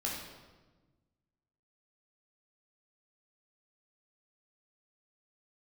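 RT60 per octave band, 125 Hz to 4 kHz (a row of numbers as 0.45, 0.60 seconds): 1.9, 1.8, 1.4, 1.2, 1.0, 0.95 seconds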